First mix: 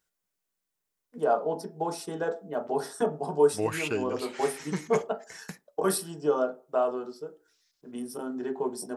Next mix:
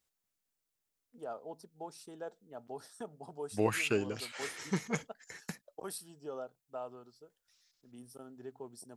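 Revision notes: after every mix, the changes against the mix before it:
first voice -10.0 dB; reverb: off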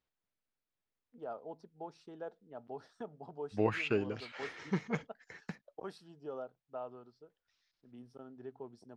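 master: add distance through air 220 m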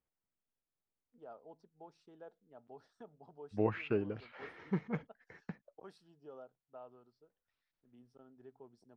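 first voice -9.0 dB; second voice: add tape spacing loss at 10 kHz 33 dB

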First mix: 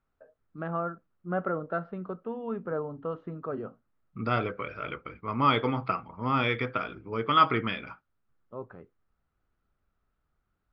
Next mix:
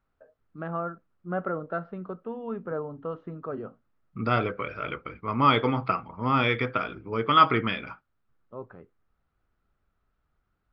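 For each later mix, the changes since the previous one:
second voice +3.0 dB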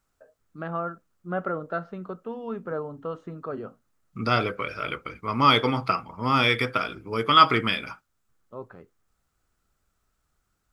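master: remove distance through air 340 m

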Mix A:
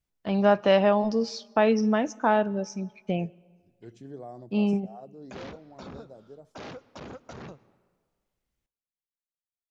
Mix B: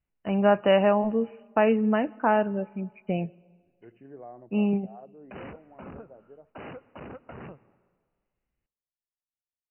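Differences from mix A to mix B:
second voice: add bass shelf 240 Hz -11.5 dB; master: add brick-wall FIR low-pass 3 kHz

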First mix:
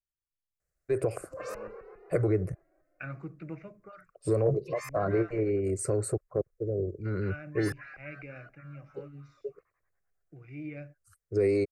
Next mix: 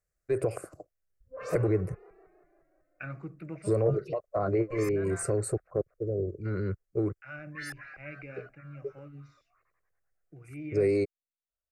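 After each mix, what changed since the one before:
first voice: entry -0.60 s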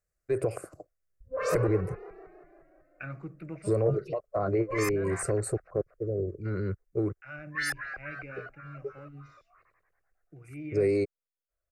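background +9.5 dB

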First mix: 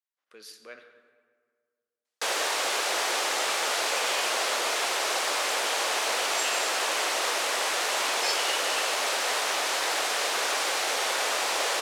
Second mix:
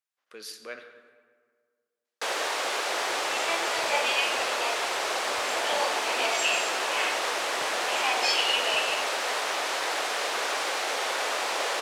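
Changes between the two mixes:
speech +5.5 dB; first sound: add treble shelf 4.6 kHz -7 dB; second sound: remove pre-emphasis filter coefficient 0.9

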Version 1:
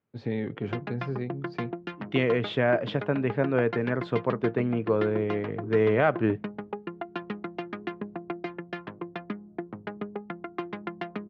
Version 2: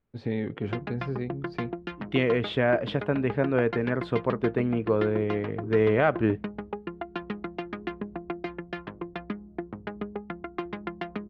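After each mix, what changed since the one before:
master: remove Chebyshev band-pass 110–7000 Hz, order 3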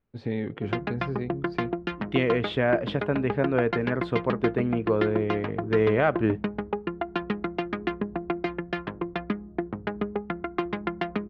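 background +4.5 dB; reverb: on, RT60 0.65 s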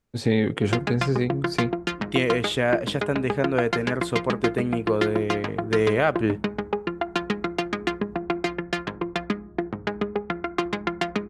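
first voice +8.0 dB; background: send +11.0 dB; master: remove distance through air 310 m

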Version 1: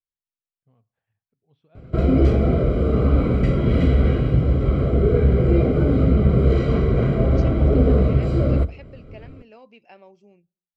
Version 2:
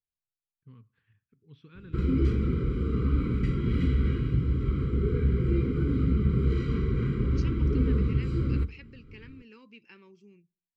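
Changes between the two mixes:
first voice +11.5 dB; background -8.0 dB; master: add Butterworth band-stop 670 Hz, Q 0.89

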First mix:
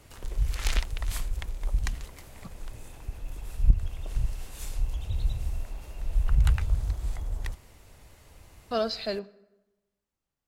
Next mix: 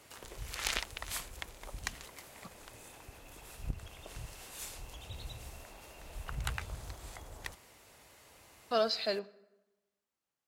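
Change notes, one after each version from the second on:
master: add high-pass 440 Hz 6 dB/octave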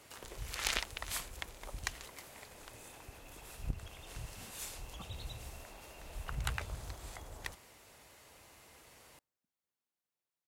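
speech: entry +2.55 s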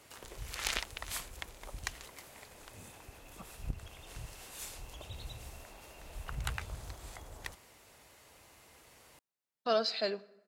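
speech: entry -1.60 s; background: send off

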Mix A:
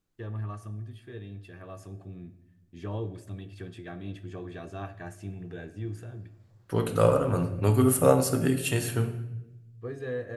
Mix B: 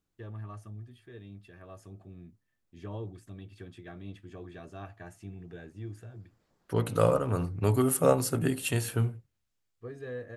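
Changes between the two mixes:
first voice -4.0 dB; reverb: off

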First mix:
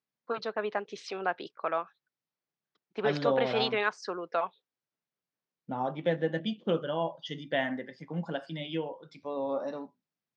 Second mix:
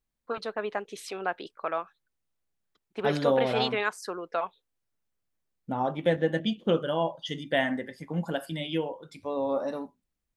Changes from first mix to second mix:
second voice +3.5 dB; master: remove elliptic band-pass 130–5600 Hz, stop band 40 dB

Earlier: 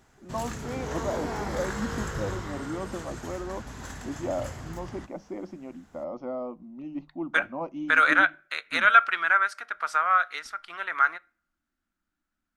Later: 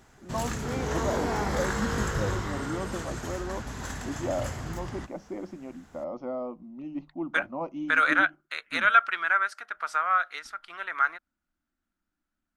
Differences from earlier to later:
background +5.0 dB; reverb: off

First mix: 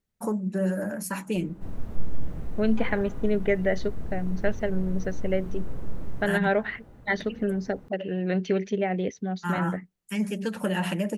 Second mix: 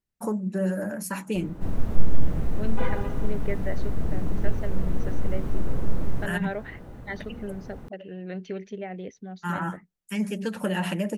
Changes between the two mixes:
second voice -9.0 dB; background +8.0 dB

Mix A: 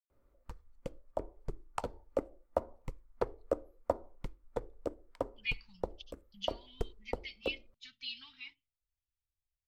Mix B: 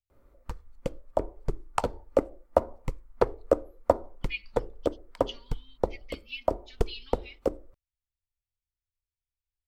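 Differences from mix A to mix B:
speech: entry -1.15 s; background +10.0 dB

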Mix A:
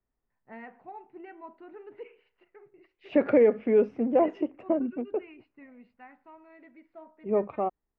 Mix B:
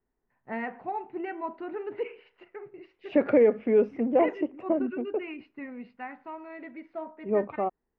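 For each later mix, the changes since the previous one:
first voice +11.0 dB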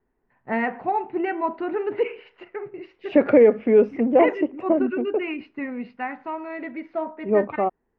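first voice +9.5 dB; second voice +6.0 dB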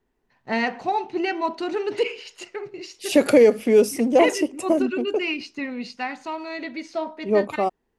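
master: remove low-pass 2.1 kHz 24 dB/octave

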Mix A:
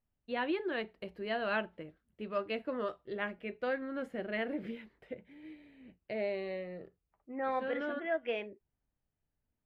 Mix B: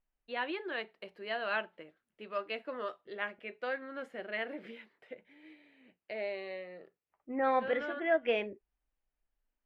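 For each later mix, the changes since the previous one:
first voice: add frequency weighting A; second voice +5.0 dB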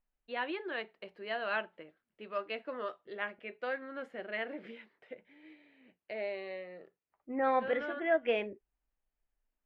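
master: add treble shelf 6.7 kHz -9.5 dB

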